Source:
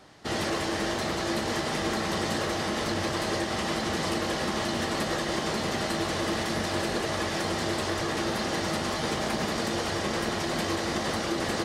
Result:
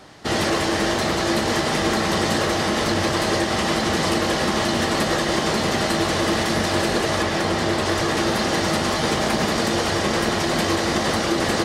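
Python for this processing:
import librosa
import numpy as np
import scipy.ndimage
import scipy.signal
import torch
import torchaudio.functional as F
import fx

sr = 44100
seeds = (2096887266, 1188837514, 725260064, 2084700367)

y = fx.high_shelf(x, sr, hz=4800.0, db=-5.5, at=(7.22, 7.86))
y = y * 10.0 ** (8.0 / 20.0)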